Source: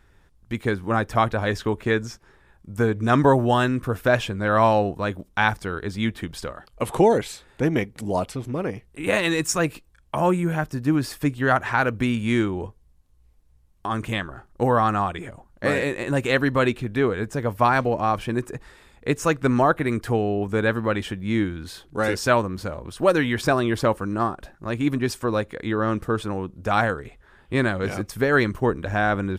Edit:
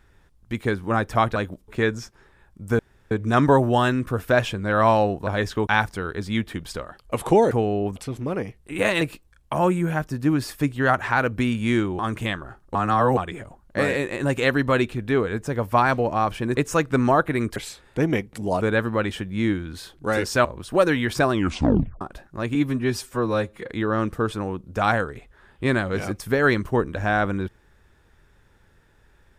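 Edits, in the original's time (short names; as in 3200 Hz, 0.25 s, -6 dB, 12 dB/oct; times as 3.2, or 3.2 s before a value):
1.36–1.76 swap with 5.03–5.35
2.87 insert room tone 0.32 s
7.19–8.24 swap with 20.07–20.52
9.29–9.63 cut
12.61–13.86 cut
14.62–15.04 reverse
18.44–19.08 cut
22.36–22.73 cut
23.6 tape stop 0.69 s
24.83–25.6 stretch 1.5×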